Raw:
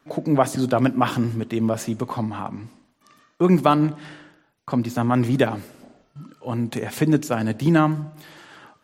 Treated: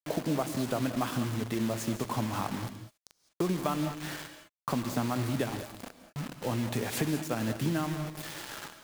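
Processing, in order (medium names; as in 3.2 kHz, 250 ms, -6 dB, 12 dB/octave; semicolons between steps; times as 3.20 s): compression 5:1, threshold -32 dBFS, peak gain reduction 18.5 dB; bit crusher 7-bit; gated-style reverb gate 230 ms rising, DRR 9.5 dB; trim +2.5 dB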